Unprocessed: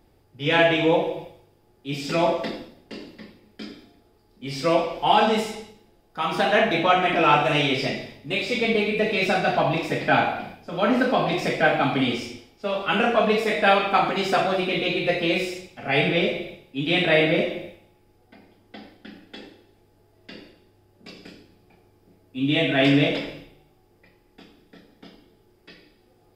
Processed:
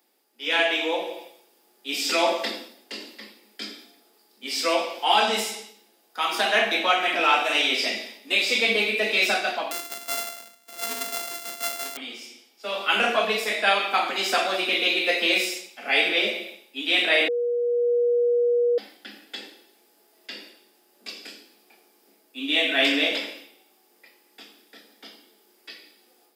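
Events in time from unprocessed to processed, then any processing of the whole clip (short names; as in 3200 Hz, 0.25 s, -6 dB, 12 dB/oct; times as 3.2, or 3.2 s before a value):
9.71–11.97 sample sorter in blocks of 64 samples
17.28–18.78 bleep 480 Hz -15.5 dBFS
whole clip: steep high-pass 200 Hz 96 dB/oct; tilt +3.5 dB/oct; AGC gain up to 7.5 dB; gain -6 dB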